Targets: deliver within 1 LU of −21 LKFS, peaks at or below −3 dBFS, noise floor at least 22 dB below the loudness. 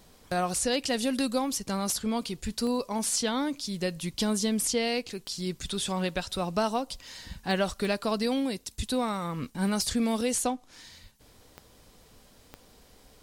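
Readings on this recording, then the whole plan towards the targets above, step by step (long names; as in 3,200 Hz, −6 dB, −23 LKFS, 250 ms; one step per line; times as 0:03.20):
number of clicks 7; integrated loudness −29.5 LKFS; sample peak −15.0 dBFS; target loudness −21.0 LKFS
→ click removal
level +8.5 dB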